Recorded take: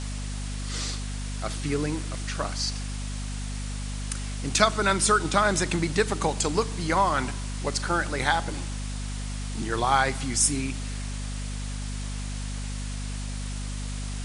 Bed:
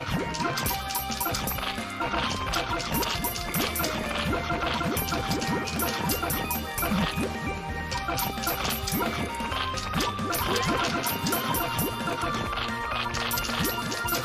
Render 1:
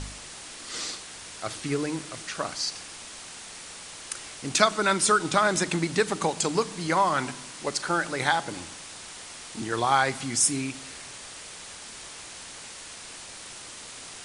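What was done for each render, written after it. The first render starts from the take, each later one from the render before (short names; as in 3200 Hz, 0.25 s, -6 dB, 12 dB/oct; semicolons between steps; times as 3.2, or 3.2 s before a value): de-hum 50 Hz, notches 5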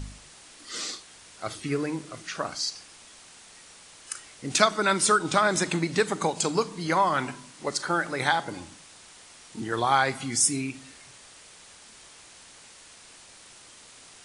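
noise print and reduce 8 dB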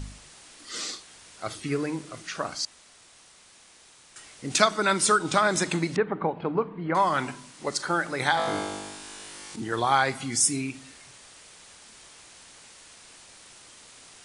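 2.65–4.16 room tone; 5.96–6.95 Gaussian blur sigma 4.1 samples; 8.35–9.56 flutter echo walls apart 3.4 m, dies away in 1.3 s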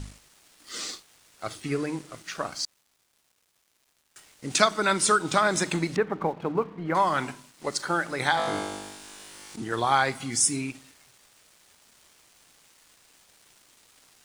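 crossover distortion -50 dBFS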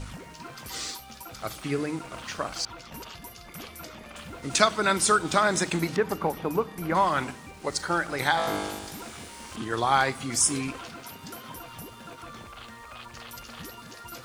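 add bed -14.5 dB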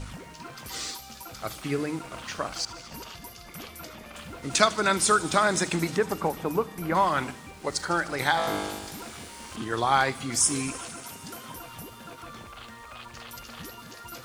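thin delay 76 ms, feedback 84%, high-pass 3900 Hz, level -16 dB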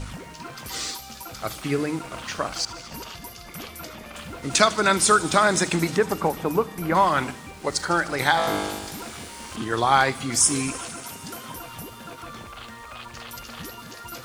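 gain +4 dB; limiter -3 dBFS, peak gain reduction 2 dB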